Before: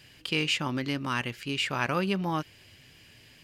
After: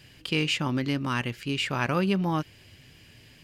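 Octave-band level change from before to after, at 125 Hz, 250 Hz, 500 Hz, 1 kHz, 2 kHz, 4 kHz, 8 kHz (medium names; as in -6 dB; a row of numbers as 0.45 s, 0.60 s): +4.5 dB, +4.0 dB, +2.5 dB, +0.5 dB, 0.0 dB, 0.0 dB, 0.0 dB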